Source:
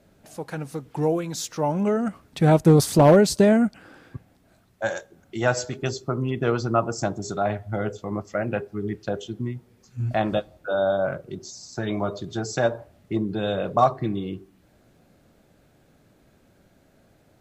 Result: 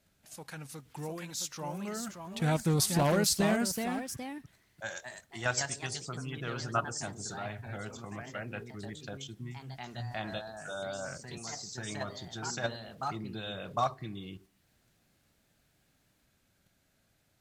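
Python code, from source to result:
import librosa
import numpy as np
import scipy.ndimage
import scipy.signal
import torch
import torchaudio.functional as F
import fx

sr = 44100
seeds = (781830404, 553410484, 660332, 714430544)

p1 = fx.tone_stack(x, sr, knobs='5-5-5')
p2 = fx.level_steps(p1, sr, step_db=18)
p3 = p1 + (p2 * 10.0 ** (2.0 / 20.0))
y = fx.echo_pitch(p3, sr, ms=747, semitones=2, count=2, db_per_echo=-6.0)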